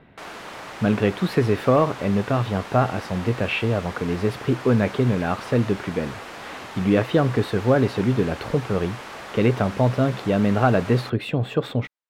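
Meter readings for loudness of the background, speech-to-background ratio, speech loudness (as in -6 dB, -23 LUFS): -36.5 LUFS, 14.0 dB, -22.5 LUFS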